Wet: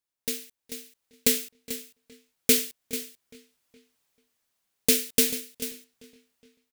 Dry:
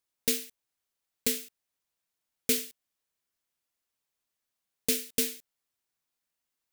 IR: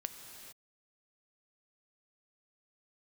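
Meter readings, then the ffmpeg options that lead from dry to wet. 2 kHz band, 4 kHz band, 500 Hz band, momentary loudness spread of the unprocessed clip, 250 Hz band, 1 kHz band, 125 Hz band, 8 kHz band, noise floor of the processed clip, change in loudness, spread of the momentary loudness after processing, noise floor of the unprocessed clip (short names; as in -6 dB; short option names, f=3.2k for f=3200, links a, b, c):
+6.0 dB, +6.0 dB, +6.0 dB, 17 LU, +6.0 dB, +6.0 dB, +6.0 dB, +6.0 dB, under -85 dBFS, +4.0 dB, 19 LU, under -85 dBFS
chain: -filter_complex "[0:a]asplit=2[a][b];[b]aecho=0:1:440:0.224[c];[a][c]amix=inputs=2:normalize=0,dynaudnorm=f=180:g=9:m=15dB,asplit=2[d][e];[e]adelay=416,lowpass=f=4.9k:p=1,volume=-21dB,asplit=2[f][g];[g]adelay=416,lowpass=f=4.9k:p=1,volume=0.47,asplit=2[h][i];[i]adelay=416,lowpass=f=4.9k:p=1,volume=0.47[j];[f][h][j]amix=inputs=3:normalize=0[k];[d][k]amix=inputs=2:normalize=0,volume=-4dB"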